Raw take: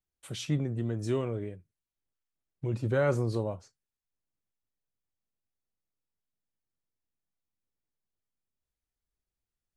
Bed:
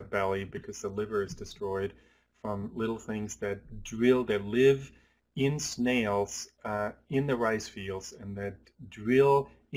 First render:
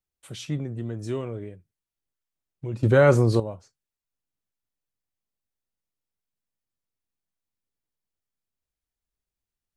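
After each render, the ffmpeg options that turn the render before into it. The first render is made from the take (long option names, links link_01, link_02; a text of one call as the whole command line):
ffmpeg -i in.wav -filter_complex "[0:a]asplit=3[link_01][link_02][link_03];[link_01]atrim=end=2.832[link_04];[link_02]atrim=start=2.828:end=3.402,asetpts=PTS-STARTPTS,volume=10dB[link_05];[link_03]atrim=start=3.398[link_06];[link_04][link_05]acrossfade=duration=0.004:curve1=hsin:curve2=hsin[link_07];[link_07][link_06]acrossfade=duration=0.004:curve1=hsin:curve2=hsin" out.wav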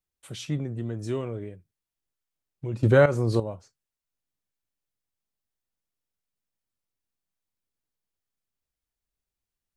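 ffmpeg -i in.wav -filter_complex "[0:a]asplit=2[link_01][link_02];[link_01]atrim=end=3.06,asetpts=PTS-STARTPTS,afade=type=out:start_time=3.056:duration=0.004:curve=hsin:silence=0.223872[link_03];[link_02]atrim=start=3.06,asetpts=PTS-STARTPTS,afade=type=in:duration=0.43:silence=0.223872[link_04];[link_03][link_04]concat=n=2:v=0:a=1" out.wav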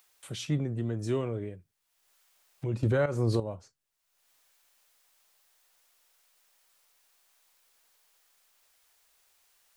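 ffmpeg -i in.wav -filter_complex "[0:a]acrossover=split=520[link_01][link_02];[link_02]acompressor=mode=upward:threshold=-48dB:ratio=2.5[link_03];[link_01][link_03]amix=inputs=2:normalize=0,alimiter=limit=-18dB:level=0:latency=1:release=239" out.wav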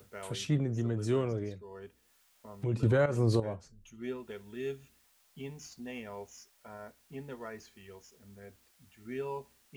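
ffmpeg -i in.wav -i bed.wav -filter_complex "[1:a]volume=-15dB[link_01];[0:a][link_01]amix=inputs=2:normalize=0" out.wav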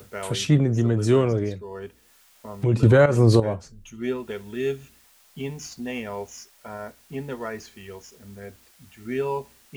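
ffmpeg -i in.wav -af "volume=11dB" out.wav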